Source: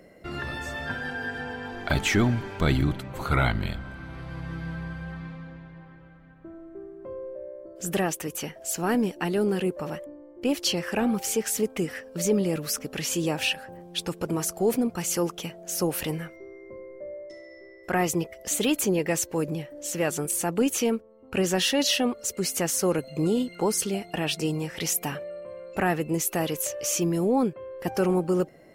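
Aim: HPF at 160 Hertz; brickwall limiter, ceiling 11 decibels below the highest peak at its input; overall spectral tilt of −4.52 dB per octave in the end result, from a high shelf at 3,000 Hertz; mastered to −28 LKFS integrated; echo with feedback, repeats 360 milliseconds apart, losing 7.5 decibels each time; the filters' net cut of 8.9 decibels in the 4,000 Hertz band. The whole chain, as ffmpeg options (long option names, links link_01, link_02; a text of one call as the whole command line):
ffmpeg -i in.wav -af "highpass=160,highshelf=frequency=3000:gain=-6.5,equalizer=frequency=4000:width_type=o:gain=-7.5,alimiter=limit=-21.5dB:level=0:latency=1,aecho=1:1:360|720|1080|1440|1800:0.422|0.177|0.0744|0.0312|0.0131,volume=4.5dB" out.wav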